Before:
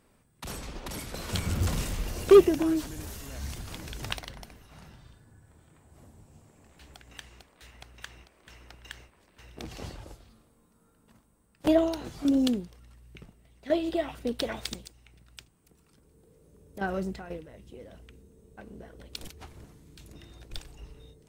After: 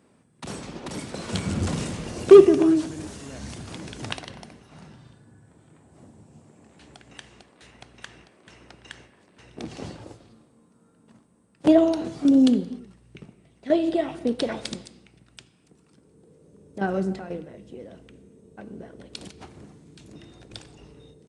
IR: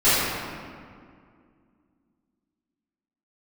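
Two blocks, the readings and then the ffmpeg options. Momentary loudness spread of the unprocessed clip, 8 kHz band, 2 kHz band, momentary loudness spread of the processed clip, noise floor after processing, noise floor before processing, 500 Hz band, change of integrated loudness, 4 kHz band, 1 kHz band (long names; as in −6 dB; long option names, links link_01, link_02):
22 LU, can't be measured, +2.0 dB, 21 LU, −61 dBFS, −65 dBFS, +6.0 dB, +7.0 dB, +1.5 dB, +3.5 dB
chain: -filter_complex "[0:a]highpass=160,lowshelf=frequency=480:gain=9,asplit=2[link_01][link_02];[1:a]atrim=start_sample=2205,afade=type=out:start_time=0.36:duration=0.01,atrim=end_sample=16317[link_03];[link_02][link_03]afir=irnorm=-1:irlink=0,volume=-34dB[link_04];[link_01][link_04]amix=inputs=2:normalize=0,aresample=22050,aresample=44100,volume=1dB"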